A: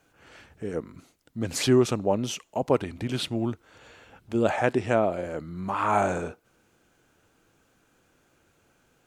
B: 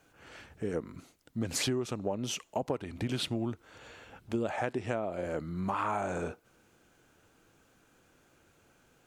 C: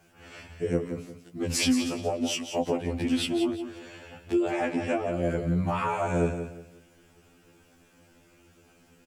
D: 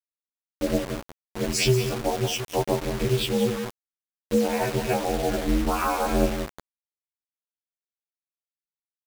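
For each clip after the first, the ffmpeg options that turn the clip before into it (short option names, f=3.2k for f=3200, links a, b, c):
-af "acompressor=threshold=-28dB:ratio=16"
-filter_complex "[0:a]asplit=2[a][b];[b]adelay=12,volume=-8dB[c];[a][c]amix=inputs=2:normalize=0,aecho=1:1:177|354|531:0.355|0.0993|0.0278,afftfilt=real='re*2*eq(mod(b,4),0)':imag='im*2*eq(mod(b,4),0)':win_size=2048:overlap=0.75,volume=6.5dB"
-af "afftdn=nr=23:nf=-36,acrusher=bits=5:mix=0:aa=0.000001,aeval=exprs='val(0)*sin(2*PI*130*n/s)':c=same,volume=6dB"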